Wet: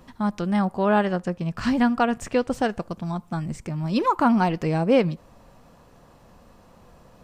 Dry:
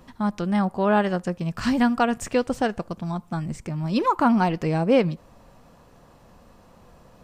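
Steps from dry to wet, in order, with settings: 1.04–2.51 s: treble shelf 6 kHz -7 dB

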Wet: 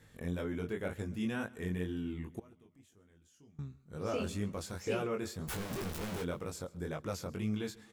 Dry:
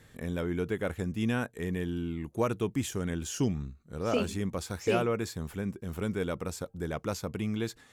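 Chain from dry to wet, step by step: 5.48–6.22 s: one-bit comparator; in parallel at +2 dB: peak limiter -24.5 dBFS, peak gain reduction 9.5 dB; on the sum: chorus 2 Hz, delay 19 ms, depth 4.2 ms; 2.39–3.59 s: inverted gate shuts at -24 dBFS, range -26 dB; feedback delay 136 ms, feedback 59%, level -22.5 dB; trim -8.5 dB

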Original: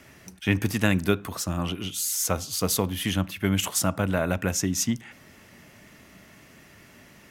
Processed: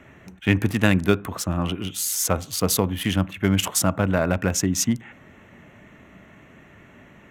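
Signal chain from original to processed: local Wiener filter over 9 samples; trim +4 dB

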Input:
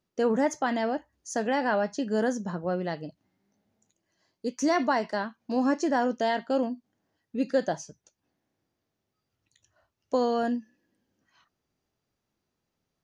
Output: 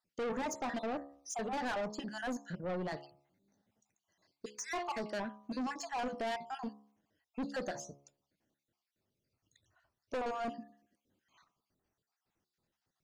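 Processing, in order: random holes in the spectrogram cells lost 46%; de-hum 70.42 Hz, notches 18; saturation -32 dBFS, distortion -6 dB; trim -1.5 dB

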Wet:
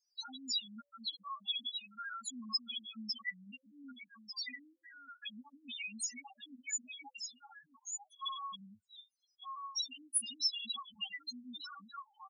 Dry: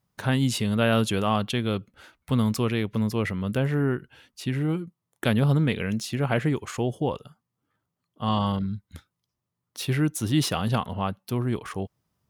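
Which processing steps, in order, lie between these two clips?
delay 1196 ms -11 dB; touch-sensitive phaser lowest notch 190 Hz, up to 2.1 kHz, full sweep at -20.5 dBFS; frequency weighting ITU-R 468; compression, threshold -30 dBFS, peak gain reduction 13.5 dB; comb 3.6 ms, depth 72%; loudest bins only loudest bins 2; elliptic band-stop 250–810 Hz, stop band 40 dB; pre-emphasis filter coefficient 0.9; trim +11.5 dB

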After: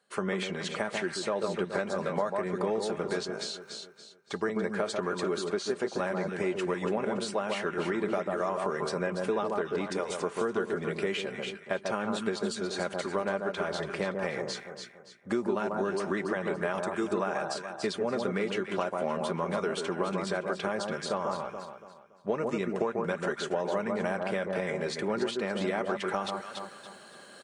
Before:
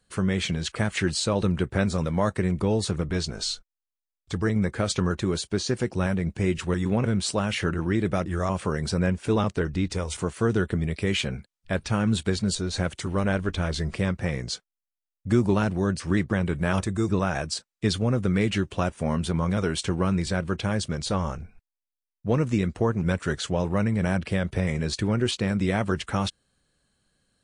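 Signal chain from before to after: reverse; upward compressor, threshold -29 dBFS; reverse; high-pass 460 Hz 12 dB/octave; comb 5 ms, depth 37%; on a send: echo whose repeats swap between lows and highs 142 ms, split 1.4 kHz, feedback 57%, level -4.5 dB; on the sum: compression, threshold -30 dBFS, peak gain reduction 10.5 dB; treble shelf 2.2 kHz -11.5 dB; trim +5 dB

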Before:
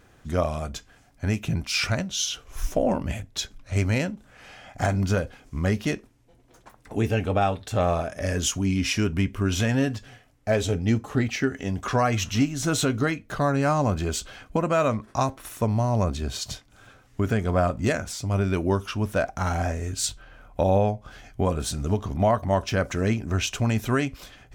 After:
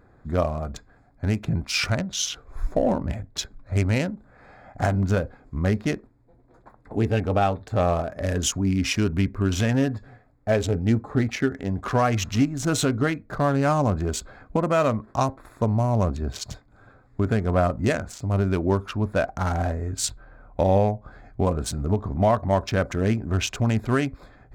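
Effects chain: local Wiener filter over 15 samples; trim +1.5 dB

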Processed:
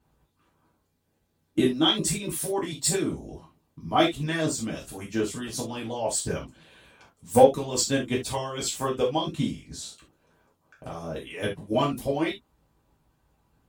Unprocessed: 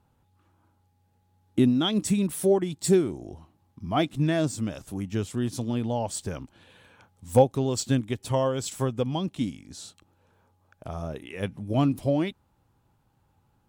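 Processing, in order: harmonic-percussive split harmonic -15 dB; gated-style reverb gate 100 ms falling, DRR -5 dB

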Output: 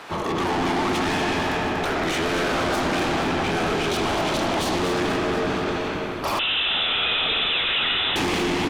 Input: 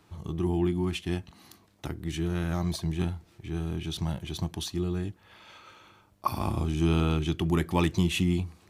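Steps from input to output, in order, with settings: spectral peaks clipped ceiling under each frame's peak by 16 dB; reverberation RT60 2.9 s, pre-delay 35 ms, DRR 1.5 dB; overdrive pedal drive 34 dB, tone 1.2 kHz, clips at -5 dBFS; saturation -22.5 dBFS, distortion -9 dB; frequency-shifting echo 239 ms, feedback 58%, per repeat -52 Hz, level -7.5 dB; 6.39–8.16 s: frequency inversion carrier 3.8 kHz

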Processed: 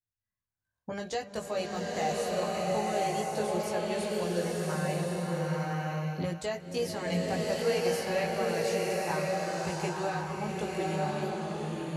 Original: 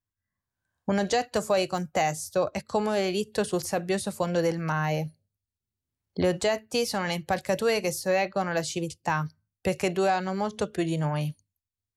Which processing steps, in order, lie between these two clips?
chorus voices 4, 0.46 Hz, delay 18 ms, depth 1.3 ms; swelling reverb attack 1080 ms, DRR -3 dB; trim -6 dB

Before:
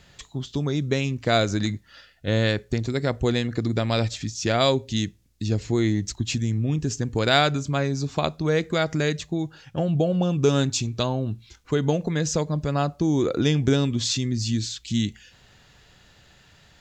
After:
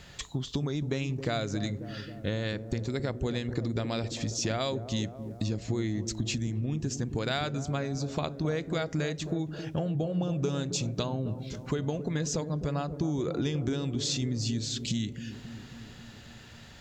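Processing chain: compression 6:1, threshold -32 dBFS, peak gain reduction 17 dB; on a send: feedback echo behind a low-pass 270 ms, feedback 68%, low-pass 710 Hz, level -9.5 dB; on the sum: trim +3.5 dB

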